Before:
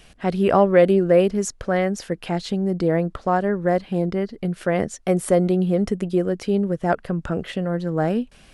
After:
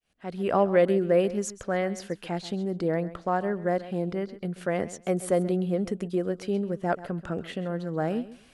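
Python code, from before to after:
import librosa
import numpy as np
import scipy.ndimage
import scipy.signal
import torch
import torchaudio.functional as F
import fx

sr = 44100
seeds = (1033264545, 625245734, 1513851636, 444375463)

y = fx.fade_in_head(x, sr, length_s=0.61)
y = fx.low_shelf(y, sr, hz=86.0, db=-9.5)
y = fx.notch(y, sr, hz=5300.0, q=28.0)
y = fx.echo_feedback(y, sr, ms=133, feedback_pct=17, wet_db=-16)
y = y * 10.0 ** (-6.0 / 20.0)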